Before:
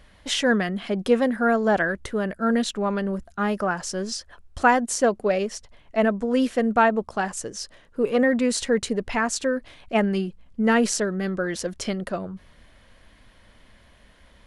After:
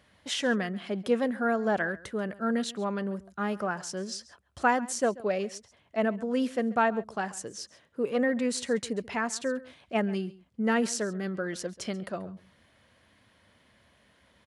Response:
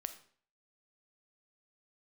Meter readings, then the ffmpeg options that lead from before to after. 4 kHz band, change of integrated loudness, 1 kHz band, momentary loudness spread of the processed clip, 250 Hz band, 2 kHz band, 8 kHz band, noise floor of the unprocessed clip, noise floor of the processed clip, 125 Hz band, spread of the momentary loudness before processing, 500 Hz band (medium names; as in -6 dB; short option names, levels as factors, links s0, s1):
-6.5 dB, -6.5 dB, -6.5 dB, 11 LU, -6.5 dB, -6.5 dB, -6.5 dB, -55 dBFS, -65 dBFS, -6.5 dB, 11 LU, -6.5 dB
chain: -filter_complex "[0:a]highpass=f=79:w=0.5412,highpass=f=79:w=1.3066,asplit=2[s0][s1];[s1]aecho=0:1:136:0.1[s2];[s0][s2]amix=inputs=2:normalize=0,volume=0.473"